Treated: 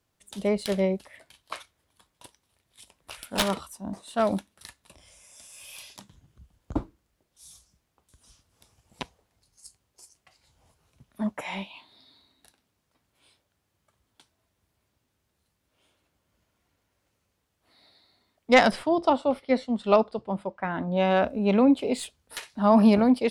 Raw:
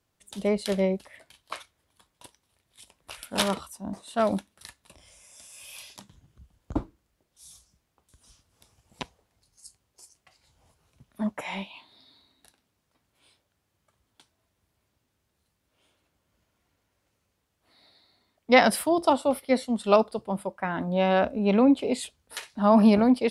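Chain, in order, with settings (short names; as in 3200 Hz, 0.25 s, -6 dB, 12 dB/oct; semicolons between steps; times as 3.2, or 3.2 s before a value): tracing distortion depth 0.041 ms; 18.71–20.97 air absorption 110 m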